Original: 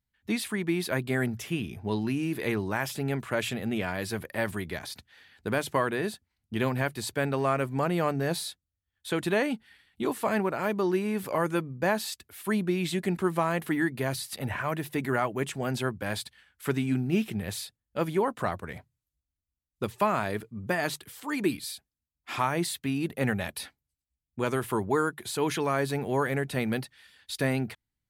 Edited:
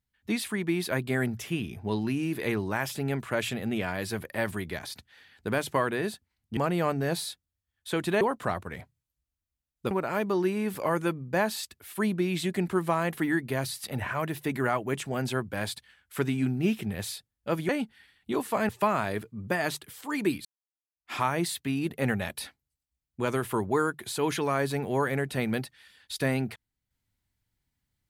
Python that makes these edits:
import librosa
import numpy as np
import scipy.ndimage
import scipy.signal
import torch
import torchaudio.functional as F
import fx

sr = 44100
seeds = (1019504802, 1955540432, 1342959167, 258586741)

y = fx.edit(x, sr, fx.cut(start_s=6.57, length_s=1.19),
    fx.swap(start_s=9.4, length_s=1.0, other_s=18.18, other_length_s=1.7),
    fx.fade_in_span(start_s=21.64, length_s=0.67, curve='exp'), tone=tone)